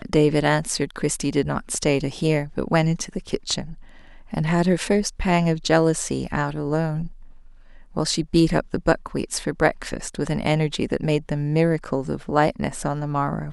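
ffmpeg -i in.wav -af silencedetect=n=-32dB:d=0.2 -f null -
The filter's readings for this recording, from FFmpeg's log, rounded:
silence_start: 3.74
silence_end: 4.33 | silence_duration: 0.59
silence_start: 7.08
silence_end: 7.96 | silence_duration: 0.88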